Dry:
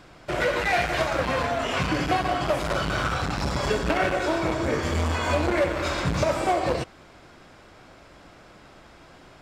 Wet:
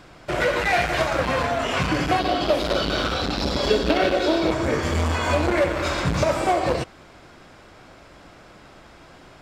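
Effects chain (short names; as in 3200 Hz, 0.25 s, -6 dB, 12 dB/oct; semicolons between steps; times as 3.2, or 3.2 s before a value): 2.19–4.51 graphic EQ 125/250/500/1000/2000/4000/8000 Hz -9/+5/+4/-4/-4/+10/-7 dB; gain +2.5 dB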